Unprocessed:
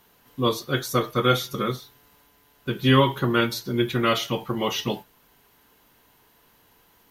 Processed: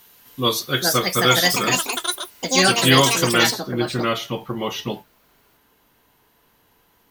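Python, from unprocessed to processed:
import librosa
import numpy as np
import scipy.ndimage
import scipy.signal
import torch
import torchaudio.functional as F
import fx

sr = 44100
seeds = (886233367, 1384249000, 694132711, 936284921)

y = fx.echo_pitch(x, sr, ms=545, semitones=6, count=3, db_per_echo=-3.0)
y = fx.high_shelf(y, sr, hz=2100.0, db=fx.steps((0.0, 11.5), (3.5, -2.0)))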